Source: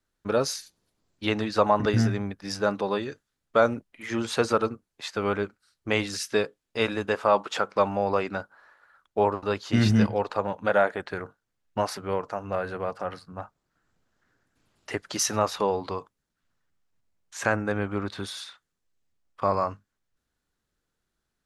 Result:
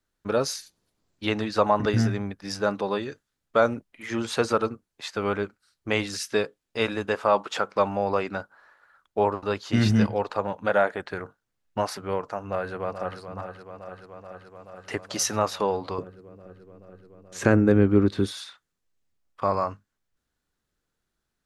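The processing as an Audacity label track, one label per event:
12.400000	13.190000	echo throw 430 ms, feedback 80%, level -10 dB
15.980000	18.320000	resonant low shelf 530 Hz +10 dB, Q 1.5

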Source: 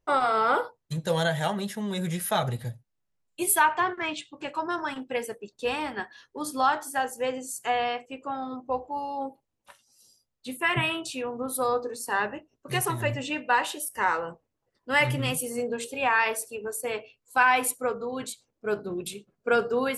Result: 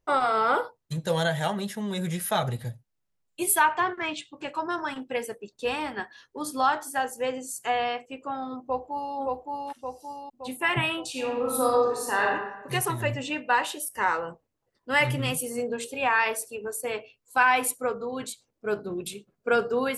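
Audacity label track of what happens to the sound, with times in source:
8.620000	9.150000	echo throw 570 ms, feedback 55%, level -1.5 dB
11.100000	12.250000	reverb throw, RT60 1 s, DRR -1.5 dB

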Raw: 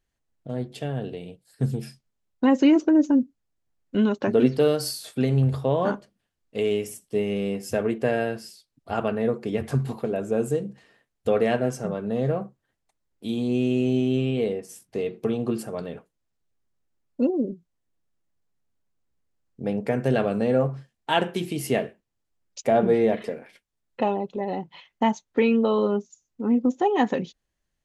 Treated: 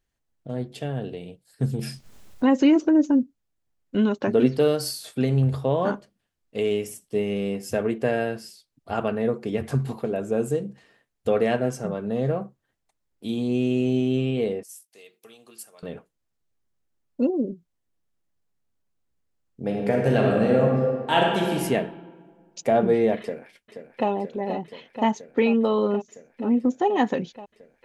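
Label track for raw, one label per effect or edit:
1.790000	2.890000	upward compressor, threshold -21 dBFS
14.630000	15.830000	differentiator
19.630000	21.540000	reverb throw, RT60 1.7 s, DRR -1 dB
23.200000	24.090000	echo throw 480 ms, feedback 85%, level -9 dB

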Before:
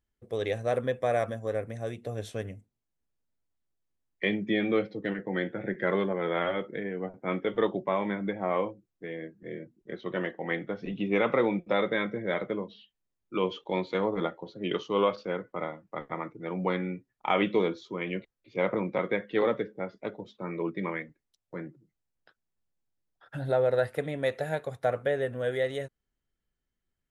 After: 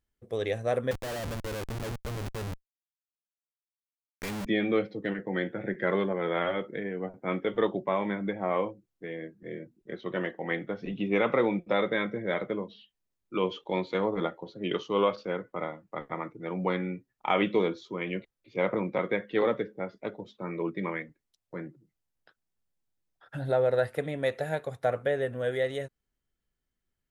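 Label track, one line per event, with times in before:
0.910000	4.460000	Schmitt trigger flips at -37.5 dBFS

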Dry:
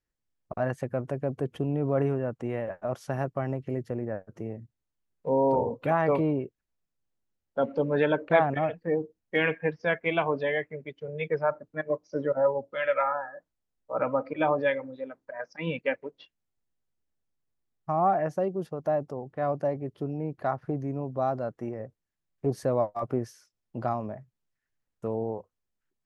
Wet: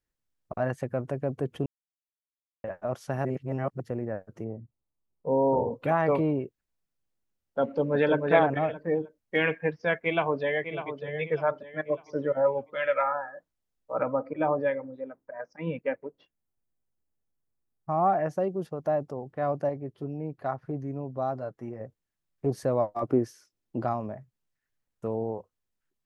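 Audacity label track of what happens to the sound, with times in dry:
1.660000	2.640000	mute
3.250000	3.800000	reverse
4.440000	5.720000	Savitzky-Golay filter over 65 samples
7.630000	8.250000	echo throw 310 ms, feedback 20%, level -3.5 dB
9.950000	11.020000	echo throw 600 ms, feedback 35%, level -9.5 dB
14.030000	17.920000	peaking EQ 3.7 kHz -13.5 dB 1.7 oct
19.690000	21.810000	flange 1.7 Hz, delay 6.6 ms, depth 1.3 ms, regen -34%
22.910000	23.850000	peaking EQ 310 Hz +9 dB

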